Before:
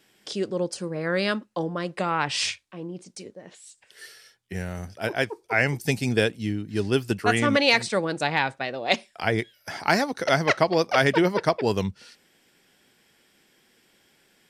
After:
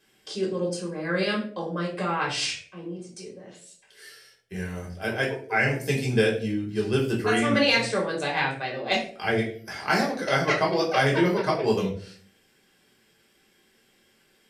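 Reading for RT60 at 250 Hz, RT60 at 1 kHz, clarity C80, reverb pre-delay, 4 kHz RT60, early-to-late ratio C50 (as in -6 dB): 0.65 s, 0.40 s, 12.0 dB, 3 ms, 0.35 s, 8.0 dB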